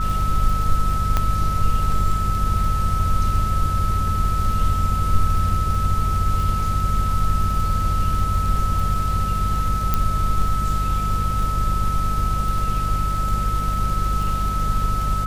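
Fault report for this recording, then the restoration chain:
surface crackle 20 per second −25 dBFS
mains hum 50 Hz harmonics 4 −24 dBFS
whistle 1,300 Hz −24 dBFS
0:01.17: click −7 dBFS
0:09.94: click −6 dBFS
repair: click removal
notch filter 1,300 Hz, Q 30
hum removal 50 Hz, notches 4

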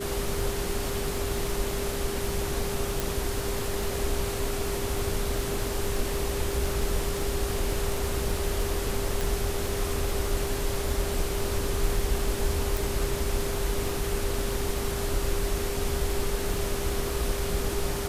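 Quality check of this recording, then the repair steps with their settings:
surface crackle 31 per second −31 dBFS
whistle 400 Hz −33 dBFS
0:03.00: click
0:09.21: click
0:12.77: click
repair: click removal
notch filter 400 Hz, Q 30

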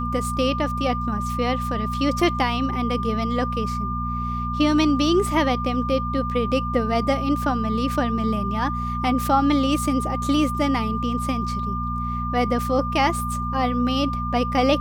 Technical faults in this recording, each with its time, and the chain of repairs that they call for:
mains hum 60 Hz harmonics 4 −28 dBFS
whistle 1,200 Hz −27 dBFS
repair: hum removal 60 Hz, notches 4
notch filter 1,200 Hz, Q 30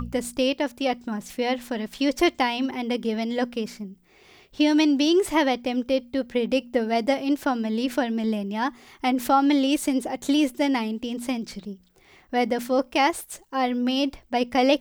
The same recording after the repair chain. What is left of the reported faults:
none of them is left

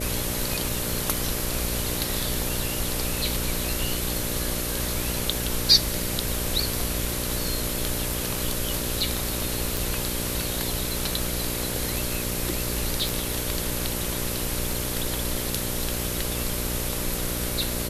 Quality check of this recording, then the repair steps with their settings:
mains buzz 60 Hz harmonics 10 −32 dBFS
0:09.77: click
0:13.09: click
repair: click removal
hum removal 60 Hz, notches 10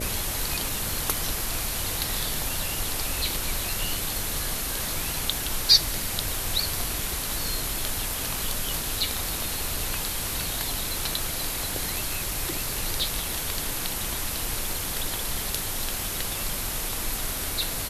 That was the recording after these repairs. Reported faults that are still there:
none of them is left

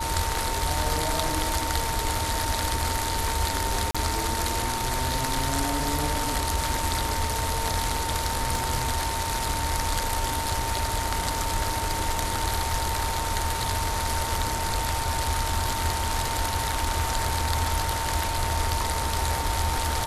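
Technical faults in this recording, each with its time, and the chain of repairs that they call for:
whistle 910 Hz −30 dBFS
0:03.91–0:03.95: drop-out 36 ms
0:08.56: drop-out 2.3 ms
0:16.72: drop-out 3.5 ms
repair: notch filter 910 Hz, Q 30
repair the gap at 0:03.91, 36 ms
repair the gap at 0:08.56, 2.3 ms
repair the gap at 0:16.72, 3.5 ms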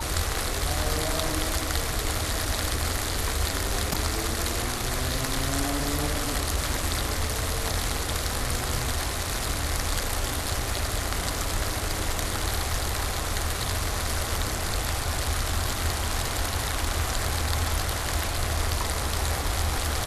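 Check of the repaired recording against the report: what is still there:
none of them is left

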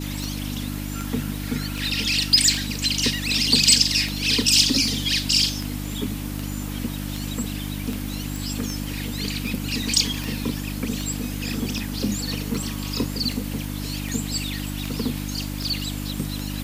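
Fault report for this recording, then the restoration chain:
mains hum 50 Hz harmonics 6 −30 dBFS
scratch tick 78 rpm
0:08.36: click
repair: click removal
hum removal 50 Hz, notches 6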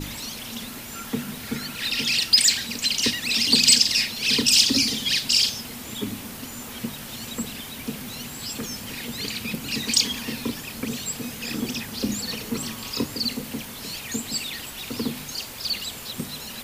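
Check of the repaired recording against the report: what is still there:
none of them is left

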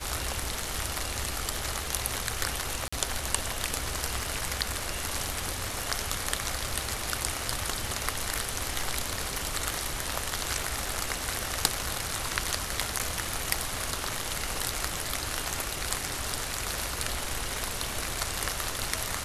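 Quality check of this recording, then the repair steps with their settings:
surface crackle 23 per second −38 dBFS
0:02.88–0:02.92: drop-out 45 ms
0:12.99–0:13.00: drop-out 7.6 ms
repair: click removal
repair the gap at 0:02.88, 45 ms
repair the gap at 0:12.99, 7.6 ms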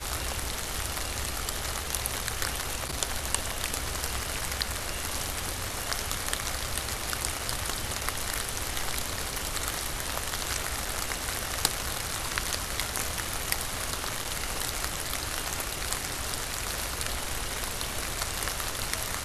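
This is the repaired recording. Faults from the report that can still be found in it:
none of them is left

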